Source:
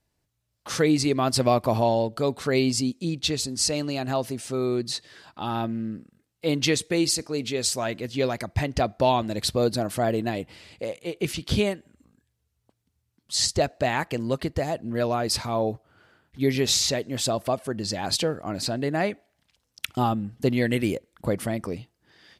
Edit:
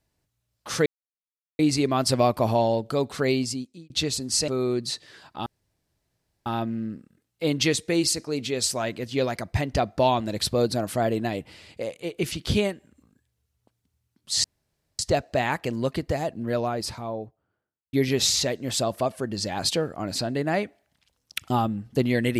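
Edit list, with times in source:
0.86 insert silence 0.73 s
2.5–3.17 fade out
3.75–4.5 cut
5.48 insert room tone 1.00 s
13.46 insert room tone 0.55 s
14.71–16.4 studio fade out

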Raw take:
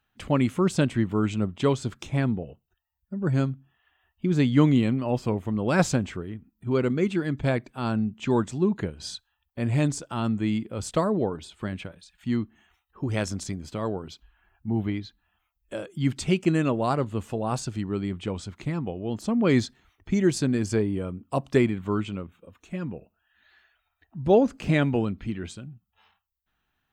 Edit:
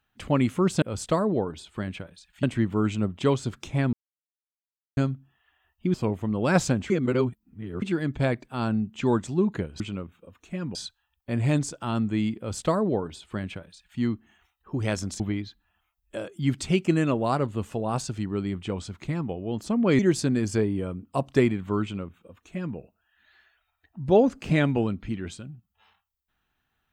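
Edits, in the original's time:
2.32–3.36 mute
4.33–5.18 cut
6.14–7.06 reverse
10.67–12.28 copy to 0.82
13.49–14.78 cut
19.57–20.17 cut
22–22.95 copy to 9.04

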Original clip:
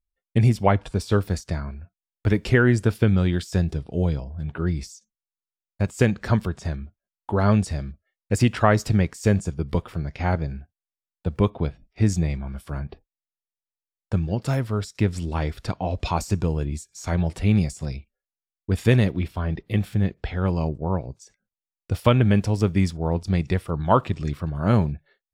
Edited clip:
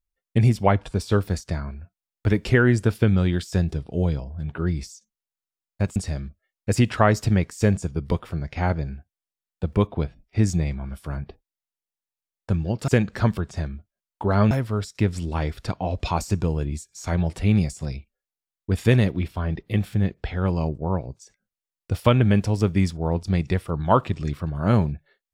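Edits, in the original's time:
5.96–7.59 move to 14.51

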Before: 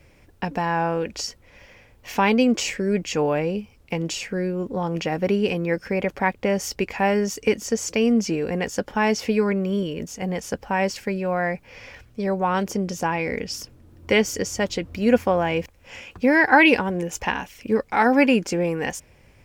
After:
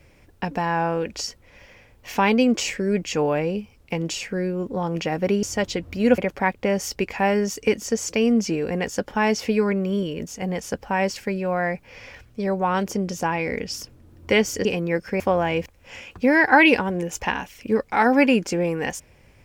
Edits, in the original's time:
5.43–5.98 swap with 14.45–15.2

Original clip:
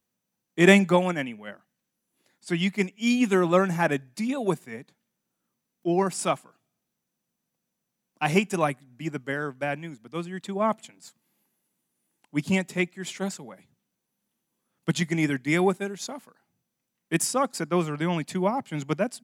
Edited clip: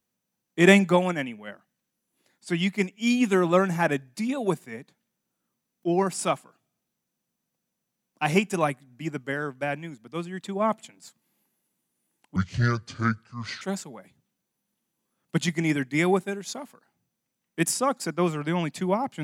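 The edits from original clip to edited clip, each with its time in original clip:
12.36–13.15 speed 63%

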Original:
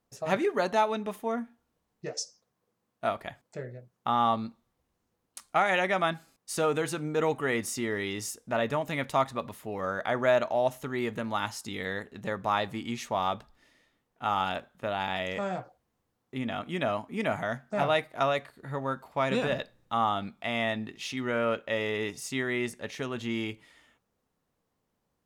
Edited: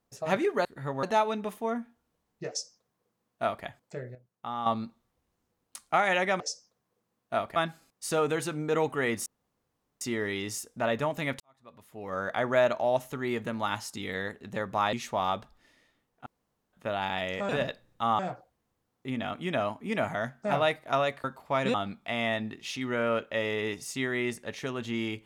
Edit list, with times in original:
2.11–3.27 copy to 6.02
3.77–4.28 gain -9 dB
7.72 insert room tone 0.75 s
9.11–9.94 fade in quadratic
12.64–12.91 cut
14.24–14.71 room tone
18.52–18.9 move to 0.65
19.4–20.1 move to 15.47

